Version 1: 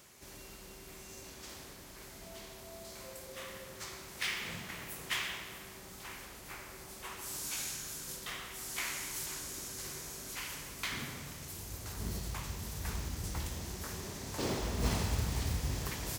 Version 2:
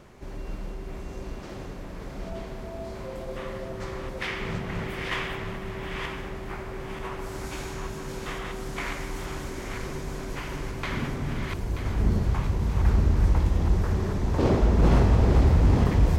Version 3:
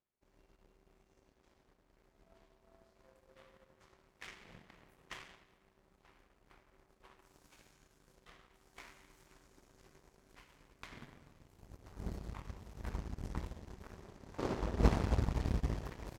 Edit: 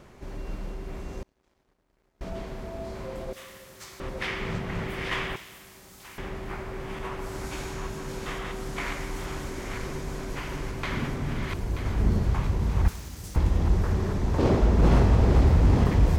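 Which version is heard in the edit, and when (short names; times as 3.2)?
2
1.23–2.21 from 3
3.33–4 from 1
5.36–6.18 from 1
12.88–13.36 from 1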